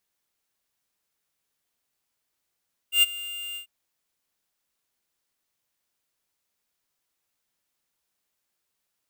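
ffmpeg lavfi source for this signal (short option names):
-f lavfi -i "aevalsrc='0.158*(2*lt(mod(2800*t,1),0.5)-1)':d=0.742:s=44100,afade=t=in:d=0.106,afade=t=out:st=0.106:d=0.024:silence=0.112,afade=t=out:st=0.64:d=0.102"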